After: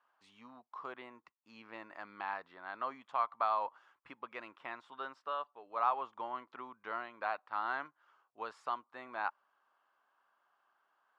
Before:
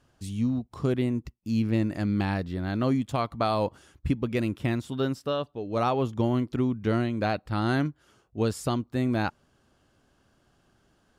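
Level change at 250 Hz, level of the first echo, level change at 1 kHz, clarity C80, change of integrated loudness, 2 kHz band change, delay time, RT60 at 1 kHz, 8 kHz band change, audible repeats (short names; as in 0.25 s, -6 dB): -30.5 dB, none, -3.5 dB, none, -11.5 dB, -6.5 dB, none, none, under -25 dB, none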